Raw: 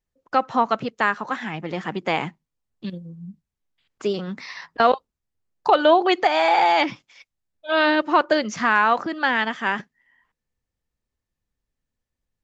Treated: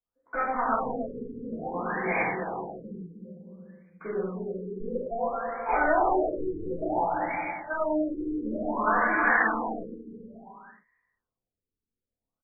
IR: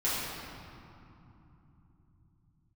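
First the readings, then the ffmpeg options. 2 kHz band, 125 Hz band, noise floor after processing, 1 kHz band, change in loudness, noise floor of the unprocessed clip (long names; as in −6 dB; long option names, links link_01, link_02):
−5.0 dB, −4.5 dB, below −85 dBFS, −7.5 dB, −7.5 dB, −84 dBFS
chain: -filter_complex "[0:a]aemphasis=mode=production:type=riaa,aresample=16000,asoftclip=type=tanh:threshold=-21dB,aresample=44100,aecho=1:1:310|527|678.9|785.2|859.7:0.631|0.398|0.251|0.158|0.1,asplit=2[link_01][link_02];[link_02]aeval=exprs='val(0)*gte(abs(val(0)),0.0355)':channel_layout=same,volume=-11dB[link_03];[link_01][link_03]amix=inputs=2:normalize=0[link_04];[1:a]atrim=start_sample=2205,afade=type=out:start_time=0.32:duration=0.01,atrim=end_sample=14553,asetrate=70560,aresample=44100[link_05];[link_04][link_05]afir=irnorm=-1:irlink=0,afftfilt=real='re*lt(b*sr/1024,470*pow(2500/470,0.5+0.5*sin(2*PI*0.57*pts/sr)))':imag='im*lt(b*sr/1024,470*pow(2500/470,0.5+0.5*sin(2*PI*0.57*pts/sr)))':win_size=1024:overlap=0.75,volume=-5.5dB"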